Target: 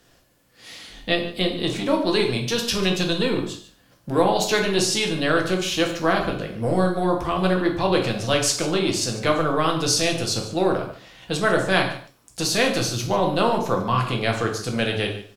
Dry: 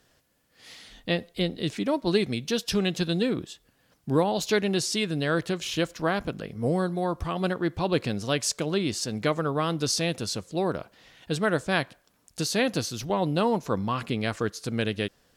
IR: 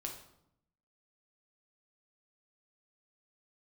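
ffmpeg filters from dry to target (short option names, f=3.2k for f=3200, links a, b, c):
-filter_complex "[0:a]acrossover=split=430[a][b];[a]asoftclip=type=tanh:threshold=-32dB[c];[c][b]amix=inputs=2:normalize=0,aecho=1:1:147:0.158[d];[1:a]atrim=start_sample=2205,atrim=end_sample=6615[e];[d][e]afir=irnorm=-1:irlink=0,volume=8.5dB"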